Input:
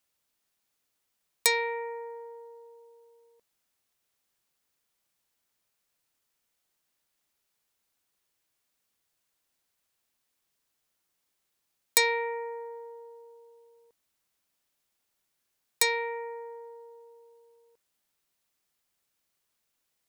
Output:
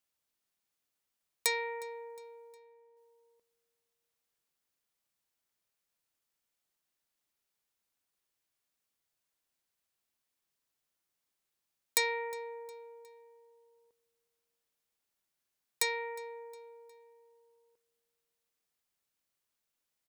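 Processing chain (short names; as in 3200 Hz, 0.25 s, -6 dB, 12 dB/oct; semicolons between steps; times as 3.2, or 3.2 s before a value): 2.57–2.97 high shelf 2800 Hz -11.5 dB; feedback echo 0.36 s, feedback 45%, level -23 dB; gain -6.5 dB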